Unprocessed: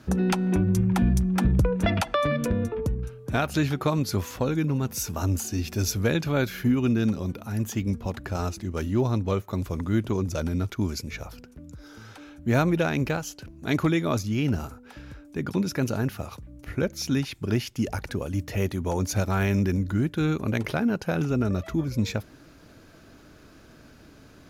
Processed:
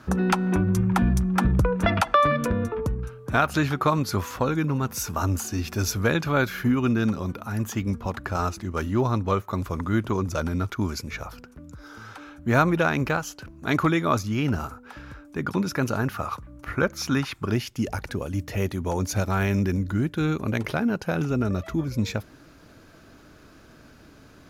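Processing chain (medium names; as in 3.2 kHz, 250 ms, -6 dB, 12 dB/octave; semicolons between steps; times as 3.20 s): peaking EQ 1.2 kHz +9 dB 1.1 oct, from 16.14 s +15 dB, from 17.50 s +2.5 dB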